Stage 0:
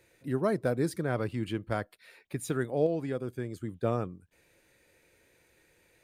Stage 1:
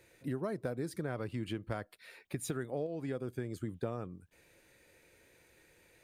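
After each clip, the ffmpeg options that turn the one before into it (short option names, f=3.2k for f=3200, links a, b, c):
-af "acompressor=threshold=-34dB:ratio=10,volume=1dB"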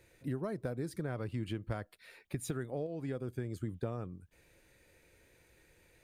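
-af "lowshelf=f=100:g=10.5,volume=-2dB"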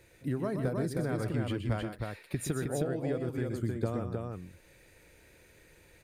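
-af "aecho=1:1:124|158|313:0.398|0.119|0.668,volume=4dB"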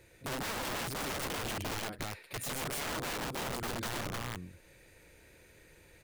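-af "aeval=exprs='(mod(39.8*val(0)+1,2)-1)/39.8':c=same"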